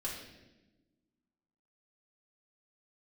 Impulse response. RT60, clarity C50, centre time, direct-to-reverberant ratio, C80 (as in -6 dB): 1.1 s, 3.0 dB, 48 ms, -6.0 dB, 6.0 dB